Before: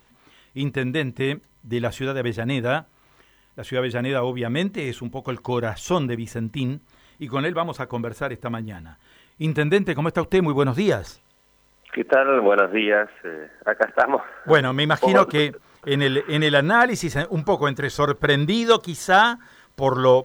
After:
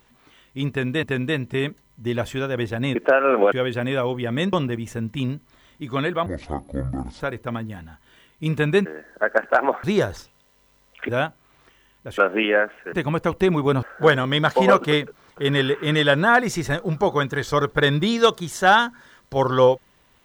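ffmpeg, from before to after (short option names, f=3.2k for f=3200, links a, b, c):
-filter_complex "[0:a]asplit=13[a][b][c][d][e][f][g][h][i][j][k][l][m];[a]atrim=end=1.032[n];[b]atrim=start=0.688:end=2.612[o];[c]atrim=start=11.988:end=12.562[p];[d]atrim=start=3.698:end=4.712[q];[e]atrim=start=5.928:end=7.664[r];[f]atrim=start=7.66:end=8.19,asetpts=PTS-STARTPTS,asetrate=24696,aresample=44100,atrim=end_sample=41737,asetpts=PTS-STARTPTS[s];[g]atrim=start=8.186:end=9.842[t];[h]atrim=start=13.308:end=14.292[u];[i]atrim=start=10.738:end=11.992[v];[j]atrim=start=2.608:end=3.702[w];[k]atrim=start=12.558:end=13.312[x];[l]atrim=start=9.838:end=10.742[y];[m]atrim=start=14.288[z];[n][o]acrossfade=d=0.004:c1=hsin:c2=hsin[aa];[aa][p]acrossfade=d=0.004:c1=hsin:c2=hsin[ab];[ab][q]acrossfade=d=0.004:c1=hsin:c2=hsin[ac];[ac][r]acrossfade=d=0.004:c1=hsin:c2=hsin[ad];[ad][s]acrossfade=d=0.004:c1=hsin:c2=hsin[ae];[ae][t]acrossfade=d=0.004:c1=hsin:c2=hsin[af];[af][u]acrossfade=d=0.004:c1=hsin:c2=hsin[ag];[ag][v]acrossfade=d=0.004:c1=hsin:c2=hsin[ah];[ah][w]acrossfade=d=0.004:c1=hsin:c2=hsin[ai];[ai][x]acrossfade=d=0.004:c1=hsin:c2=hsin[aj];[aj][y]acrossfade=d=0.004:c1=hsin:c2=hsin[ak];[ak][z]acrossfade=d=0.004:c1=hsin:c2=hsin"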